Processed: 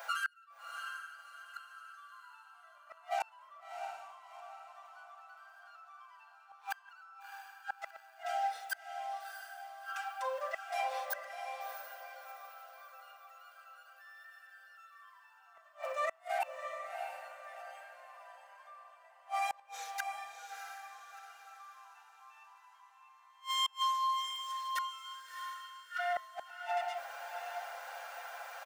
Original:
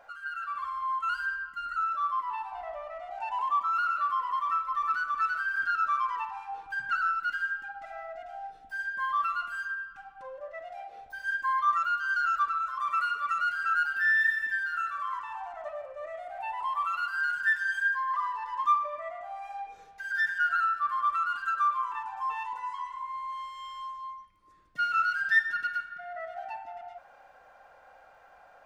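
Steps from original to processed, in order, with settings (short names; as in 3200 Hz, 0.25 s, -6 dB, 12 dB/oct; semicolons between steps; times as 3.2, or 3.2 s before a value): steep high-pass 500 Hz 48 dB/oct; tilt +4.5 dB/oct; comb 6 ms, depth 48%; limiter -21.5 dBFS, peak gain reduction 13 dB; flipped gate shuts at -31 dBFS, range -36 dB; diffused feedback echo 0.681 s, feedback 43%, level -6 dB; gain +7.5 dB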